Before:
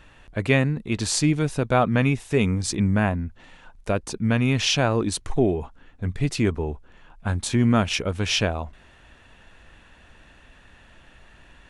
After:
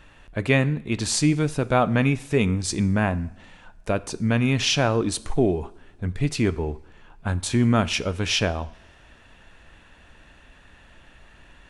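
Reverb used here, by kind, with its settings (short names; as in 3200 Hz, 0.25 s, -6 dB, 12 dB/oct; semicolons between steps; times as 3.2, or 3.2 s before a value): two-slope reverb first 0.61 s, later 2.7 s, from -22 dB, DRR 15 dB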